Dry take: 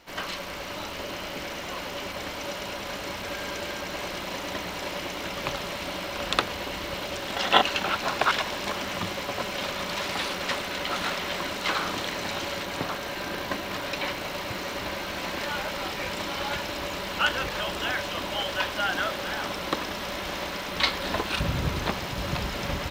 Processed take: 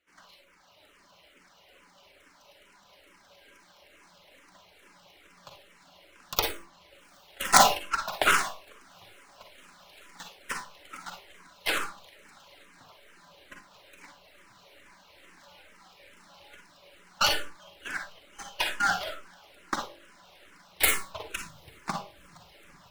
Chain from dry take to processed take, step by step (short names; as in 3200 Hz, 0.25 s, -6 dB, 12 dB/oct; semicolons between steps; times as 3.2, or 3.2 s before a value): tracing distortion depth 0.43 ms; low shelf 410 Hz -7 dB; diffused feedback echo 0.819 s, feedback 74%, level -11 dB; reverb removal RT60 1.1 s; gate -27 dBFS, range -24 dB; de-hum 48.56 Hz, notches 24; reverb RT60 0.30 s, pre-delay 38 ms, DRR 3 dB; endless phaser -2.3 Hz; gain +5 dB